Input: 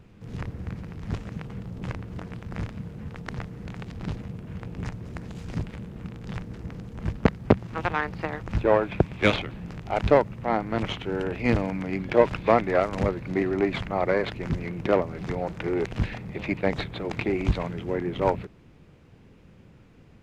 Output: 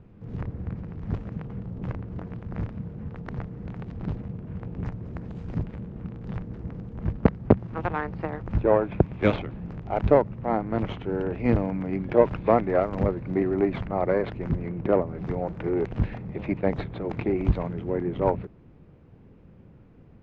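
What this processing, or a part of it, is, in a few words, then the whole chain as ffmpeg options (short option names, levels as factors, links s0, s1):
through cloth: -filter_complex "[0:a]lowpass=6600,highshelf=f=2000:g=-17,asettb=1/sr,asplit=3[s0][s1][s2];[s0]atrim=end=14.534[s3];[s1]atrim=start=14.53:end=15.2,asetpts=PTS-STARTPTS,afade=t=in:d=0.004:c=qsin,afade=t=out:st=0.666:d=0.004:c=qsin,highshelf=f=3700:g=-6[s4];[s2]atrim=start=15.196[s5];[s3][s4]acrossfade=d=0.004:c1=hsin:c2=qsin[s6];[s6][s5]acrossfade=d=0.004:c1=qsin:c2=hsin,volume=1.19"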